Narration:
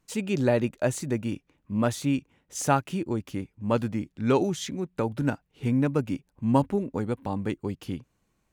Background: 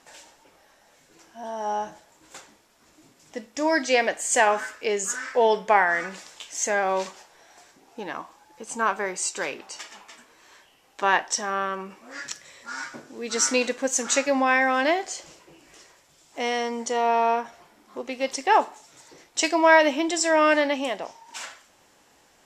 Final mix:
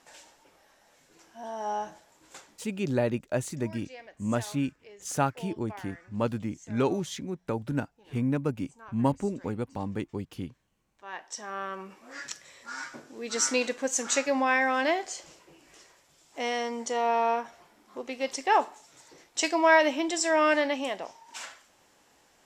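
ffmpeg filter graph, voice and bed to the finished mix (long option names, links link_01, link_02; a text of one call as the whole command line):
ffmpeg -i stem1.wav -i stem2.wav -filter_complex "[0:a]adelay=2500,volume=-3.5dB[link_01];[1:a]volume=17.5dB,afade=type=out:start_time=2.35:duration=0.8:silence=0.0841395,afade=type=in:start_time=11.03:duration=1.02:silence=0.0841395[link_02];[link_01][link_02]amix=inputs=2:normalize=0" out.wav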